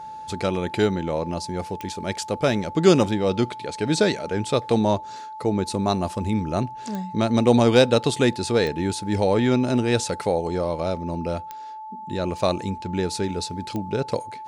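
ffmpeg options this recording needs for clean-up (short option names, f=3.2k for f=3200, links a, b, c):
-af "adeclick=t=4,bandreject=f=870:w=30"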